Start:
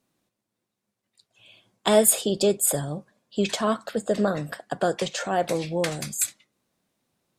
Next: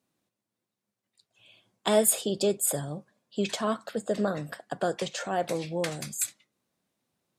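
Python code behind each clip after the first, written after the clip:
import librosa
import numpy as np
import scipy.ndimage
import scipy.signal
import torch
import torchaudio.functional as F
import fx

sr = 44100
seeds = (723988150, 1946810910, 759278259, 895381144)

y = scipy.signal.sosfilt(scipy.signal.butter(2, 61.0, 'highpass', fs=sr, output='sos'), x)
y = F.gain(torch.from_numpy(y), -4.5).numpy()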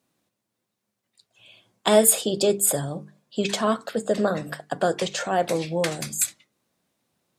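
y = fx.hum_notches(x, sr, base_hz=50, count=9)
y = F.gain(torch.from_numpy(y), 6.0).numpy()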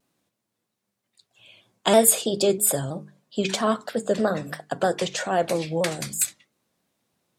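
y = fx.vibrato_shape(x, sr, shape='saw_down', rate_hz=3.1, depth_cents=100.0)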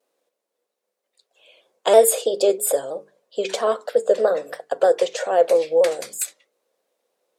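y = fx.highpass_res(x, sr, hz=490.0, q=4.9)
y = F.gain(torch.from_numpy(y), -2.5).numpy()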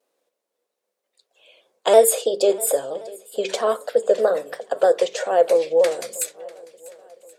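y = fx.echo_swing(x, sr, ms=1076, ratio=1.5, feedback_pct=32, wet_db=-21.5)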